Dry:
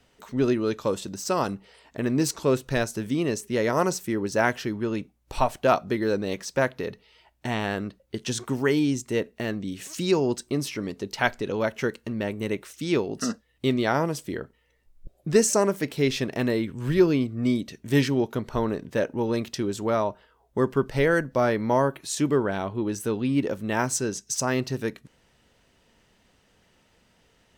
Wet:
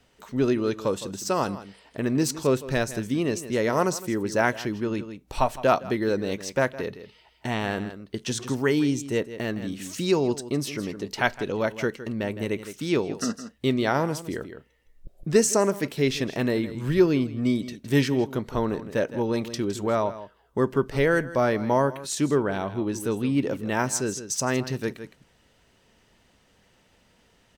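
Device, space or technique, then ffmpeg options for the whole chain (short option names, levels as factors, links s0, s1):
ducked delay: -filter_complex "[0:a]asplit=3[s0][s1][s2];[s1]adelay=162,volume=0.562[s3];[s2]apad=whole_len=1223193[s4];[s3][s4]sidechaincompress=threshold=0.0355:ratio=16:attack=16:release=862[s5];[s0][s5]amix=inputs=2:normalize=0"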